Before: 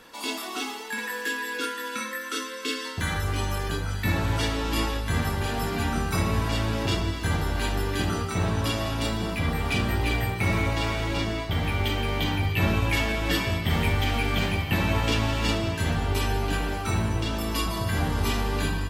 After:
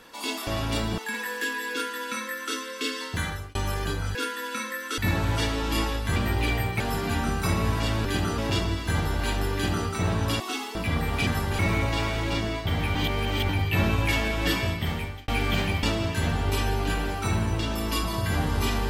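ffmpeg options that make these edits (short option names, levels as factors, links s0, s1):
-filter_complex "[0:a]asplit=18[s0][s1][s2][s3][s4][s5][s6][s7][s8][s9][s10][s11][s12][s13][s14][s15][s16][s17];[s0]atrim=end=0.472[s18];[s1]atrim=start=8.758:end=9.272[s19];[s2]atrim=start=0.818:end=3.39,asetpts=PTS-STARTPTS,afade=t=out:st=2.192:d=0.38[s20];[s3]atrim=start=3.39:end=3.992,asetpts=PTS-STARTPTS,afade=t=in:d=0.004:c=hsin[s21];[s4]atrim=start=1.558:end=2.392[s22];[s5]atrim=start=3.988:end=5.172[s23];[s6]atrim=start=9.788:end=10.432[s24];[s7]atrim=start=5.488:end=6.742[s25];[s8]atrim=start=7.898:end=8.232[s26];[s9]atrim=start=6.738:end=8.762[s27];[s10]atrim=start=0.468:end=0.822[s28];[s11]atrim=start=9.268:end=9.792[s29];[s12]atrim=start=5.168:end=5.492[s30];[s13]atrim=start=10.428:end=11.792[s31];[s14]atrim=start=11.788:end=12.332,asetpts=PTS-STARTPTS,areverse[s32];[s15]atrim=start=12.328:end=14.12,asetpts=PTS-STARTPTS,afade=t=out:st=1.162:d=0.63[s33];[s16]atrim=start=14.12:end=14.672,asetpts=PTS-STARTPTS,afade=t=in:d=0.004:c=hsin[s34];[s17]atrim=start=15.458[s35];[s18][s19]acrossfade=d=0.004:c1=hsin:c2=hsin[s36];[s20][s21]concat=n=2:v=0:a=1[s37];[s36][s37]acrossfade=d=0.004:c1=hsin:c2=hsin[s38];[s38][s22]acrossfade=d=0.004:c1=hsin:c2=hsin[s39];[s39][s23]acrossfade=d=0.004:c1=hsin:c2=hsin[s40];[s40][s24]acrossfade=d=0.004:c1=hsin:c2=hsin[s41];[s41][s25]acrossfade=d=0.004:c1=hsin:c2=hsin[s42];[s42][s26]acrossfade=d=0.004:c1=hsin:c2=hsin[s43];[s43][s27]acrossfade=d=0.004:c1=hsin:c2=hsin[s44];[s44][s28]acrossfade=d=0.004:c1=hsin:c2=hsin[s45];[s45][s29]acrossfade=d=0.004:c1=hsin:c2=hsin[s46];[s46][s30]acrossfade=d=0.004:c1=hsin:c2=hsin[s47];[s47][s31]acrossfade=d=0.004:c1=hsin:c2=hsin[s48];[s48][s32]acrossfade=d=0.004:c1=hsin:c2=hsin[s49];[s33][s34]concat=n=2:v=0:a=1[s50];[s49][s50]acrossfade=d=0.004:c1=hsin:c2=hsin[s51];[s51][s35]acrossfade=d=0.004:c1=hsin:c2=hsin"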